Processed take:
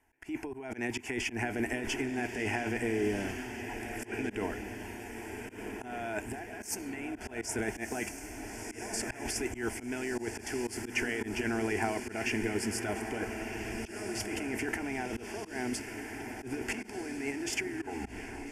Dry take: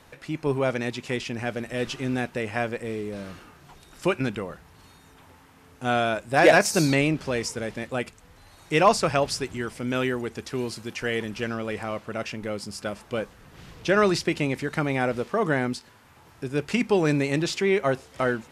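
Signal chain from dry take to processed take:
turntable brake at the end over 0.92 s
compressor whose output falls as the input rises −32 dBFS, ratio −1
on a send: feedback delay with all-pass diffusion 1,349 ms, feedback 55%, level −7 dB
on the sum: volume swells 115 ms
phaser with its sweep stopped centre 800 Hz, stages 8
noise gate with hold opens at −35 dBFS

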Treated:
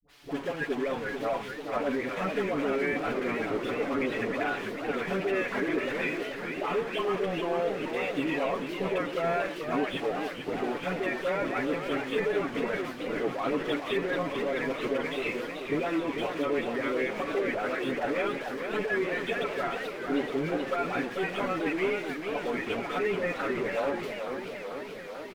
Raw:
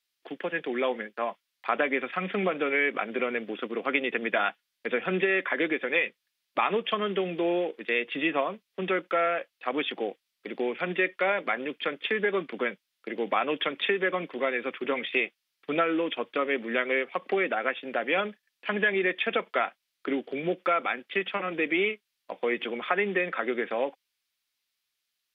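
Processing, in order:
converter with a step at zero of −27 dBFS
low-pass filter 1,400 Hz 6 dB per octave
downward expander −34 dBFS
comb filter 7.1 ms, depth 67%
brickwall limiter −17 dBFS, peak gain reduction 7.5 dB
all-pass dispersion highs, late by 81 ms, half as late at 640 Hz
pitch vibrato 1.4 Hz 49 cents
feedback echo with a swinging delay time 438 ms, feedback 73%, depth 175 cents, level −7 dB
level −4.5 dB

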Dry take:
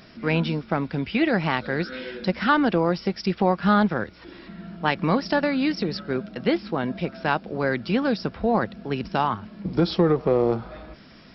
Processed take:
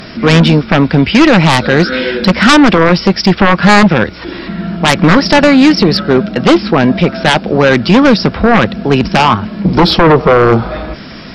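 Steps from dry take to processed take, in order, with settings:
sine wavefolder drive 12 dB, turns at −5.5 dBFS
level +4 dB

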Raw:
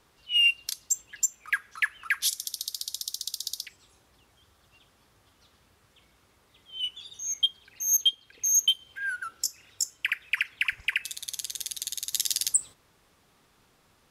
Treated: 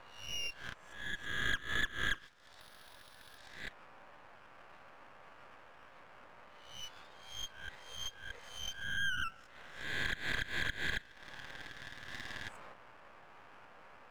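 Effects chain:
peak hold with a rise ahead of every peak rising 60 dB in 0.56 s
Chebyshev band-pass filter 540–1,700 Hz, order 3
downward compressor 3 to 1, threshold −49 dBFS, peak gain reduction 20 dB
half-wave rectification
0:02.60–0:03.38: bad sample-rate conversion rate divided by 3×, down filtered, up hold
level +14.5 dB

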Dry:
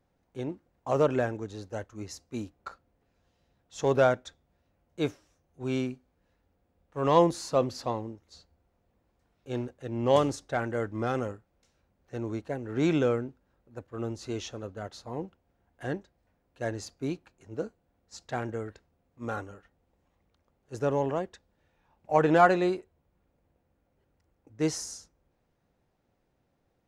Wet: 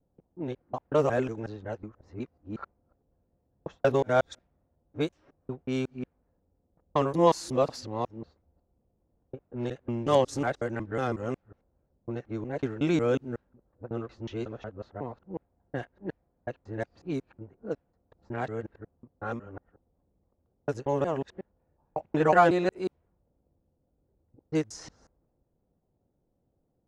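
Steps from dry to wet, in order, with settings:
reversed piece by piece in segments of 183 ms
low-pass that shuts in the quiet parts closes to 590 Hz, open at −25.5 dBFS

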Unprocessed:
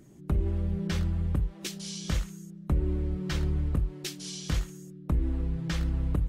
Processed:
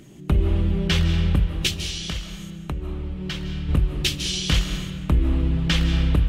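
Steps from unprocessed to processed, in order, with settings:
parametric band 3,000 Hz +11.5 dB 0.92 octaves
0:01.70–0:03.69: downward compressor 2.5 to 1, threshold −39 dBFS, peak gain reduction 11.5 dB
convolution reverb RT60 1.7 s, pre-delay 115 ms, DRR 6.5 dB
level +7.5 dB

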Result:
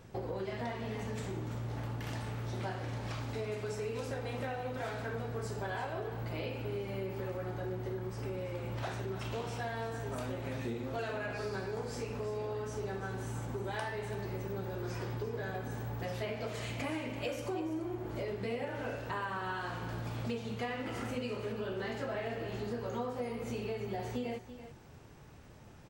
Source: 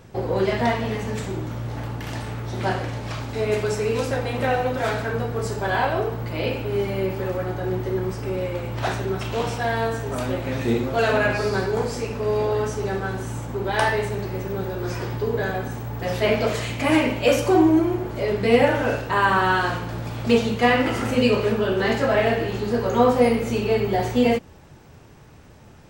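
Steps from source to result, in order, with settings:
downward compressor 6 to 1, threshold −28 dBFS, peak gain reduction 16 dB
on a send: single-tap delay 336 ms −12.5 dB
on the sum: level −7.5 dB

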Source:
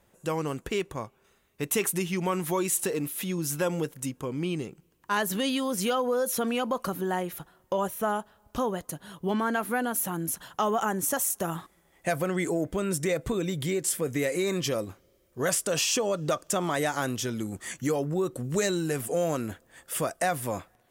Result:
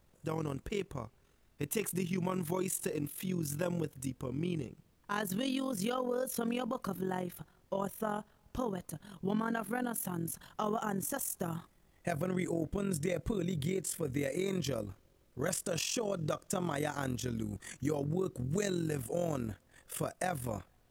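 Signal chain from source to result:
amplitude modulation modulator 44 Hz, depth 55%
background noise pink −69 dBFS
low-shelf EQ 230 Hz +9.5 dB
level −6.5 dB

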